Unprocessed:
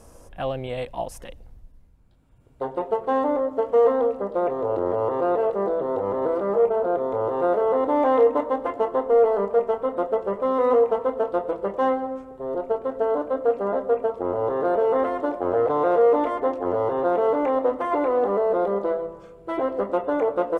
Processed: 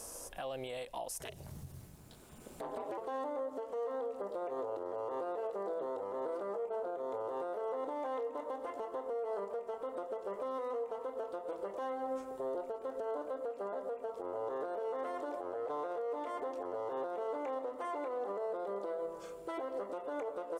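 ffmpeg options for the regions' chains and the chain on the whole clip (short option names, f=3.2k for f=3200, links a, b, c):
-filter_complex "[0:a]asettb=1/sr,asplit=3[a][b][c];[a]atrim=end=1.204[d];[b]atrim=start=1.2:end=2.98,asetpts=PTS-STARTPTS,afade=t=in:d=0.004:c=qsin,afade=t=out:st=1.776:d=0.004:c=qsin,acompressor=threshold=-43dB:ratio=2.5:attack=3.2:release=140:knee=1:detection=peak,aeval=exprs='val(0)*sin(2*PI*110*n/s)':c=same,aeval=exprs='0.0891*sin(PI/2*2.82*val(0)/0.0891)':c=same[e];[c]atrim=start=2.976[f];[d][e]acrossfade=d=0.004:c1=hsin:c2=qsin[g];[g][f]acrossfade=d=0.004:c1=qsin:c2=hsin,bass=f=250:g=-12,treble=f=4k:g=12,acompressor=threshold=-27dB:ratio=5,alimiter=level_in=7dB:limit=-24dB:level=0:latency=1:release=267,volume=-7dB"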